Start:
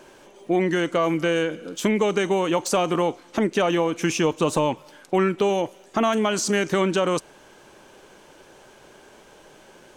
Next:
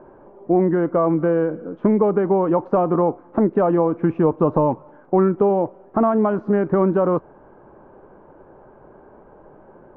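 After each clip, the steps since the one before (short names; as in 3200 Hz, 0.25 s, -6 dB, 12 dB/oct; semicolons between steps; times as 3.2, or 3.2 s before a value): LPF 1200 Hz 24 dB/oct; low shelf 180 Hz +4 dB; gain +3.5 dB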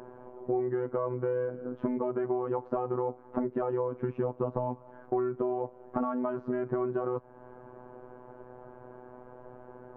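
robotiser 125 Hz; compressor 2.5:1, threshold -32 dBFS, peak gain reduction 12 dB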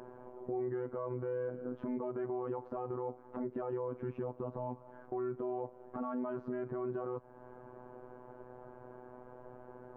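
limiter -25 dBFS, peak gain reduction 10.5 dB; gain -3 dB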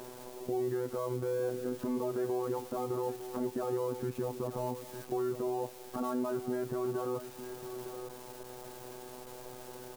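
switching spikes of -41 dBFS; echo 0.907 s -11 dB; gain +3.5 dB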